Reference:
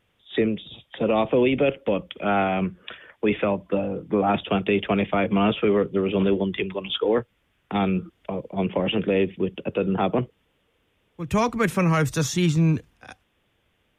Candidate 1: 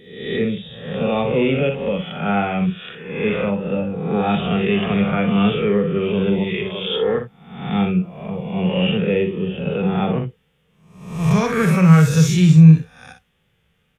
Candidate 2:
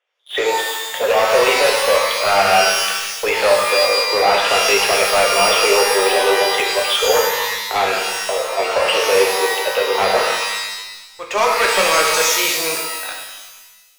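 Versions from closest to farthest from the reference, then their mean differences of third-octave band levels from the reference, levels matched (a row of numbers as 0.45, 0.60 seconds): 1, 2; 5.0, 19.0 decibels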